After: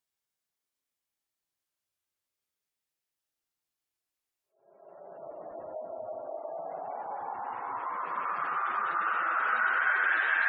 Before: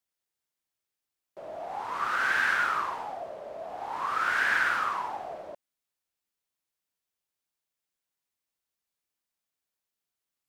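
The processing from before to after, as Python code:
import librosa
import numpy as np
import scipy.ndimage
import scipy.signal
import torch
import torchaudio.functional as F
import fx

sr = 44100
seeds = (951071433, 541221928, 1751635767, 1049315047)

y = fx.wow_flutter(x, sr, seeds[0], rate_hz=2.1, depth_cents=78.0)
y = fx.paulstretch(y, sr, seeds[1], factor=5.3, window_s=0.25, from_s=0.41)
y = fx.spec_gate(y, sr, threshold_db=-25, keep='strong')
y = y * librosa.db_to_amplitude(-1.0)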